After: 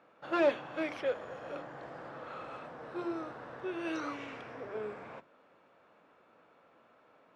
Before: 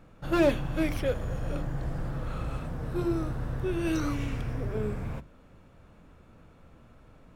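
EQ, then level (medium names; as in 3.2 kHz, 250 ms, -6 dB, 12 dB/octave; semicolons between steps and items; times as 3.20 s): band-pass 510–5700 Hz; treble shelf 3.7 kHz -10.5 dB; 0.0 dB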